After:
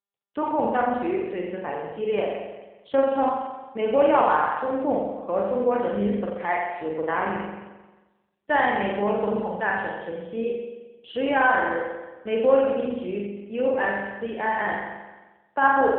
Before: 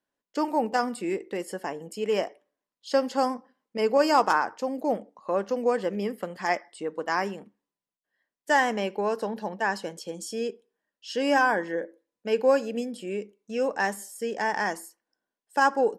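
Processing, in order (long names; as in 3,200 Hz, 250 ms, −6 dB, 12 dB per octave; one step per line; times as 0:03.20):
noise gate with hold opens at −44 dBFS
on a send: flutter between parallel walls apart 7.6 metres, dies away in 1.2 s
on the sum: AMR narrowband 7.4 kbit/s 8,000 Hz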